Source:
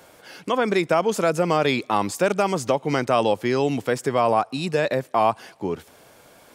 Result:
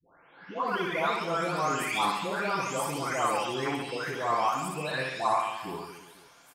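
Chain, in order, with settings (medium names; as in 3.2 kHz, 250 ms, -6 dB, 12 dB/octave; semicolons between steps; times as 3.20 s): delay that grows with frequency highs late, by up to 671 ms; resonant low shelf 780 Hz -6.5 dB, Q 1.5; reverse bouncing-ball echo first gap 60 ms, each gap 1.25×, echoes 5; trim -4.5 dB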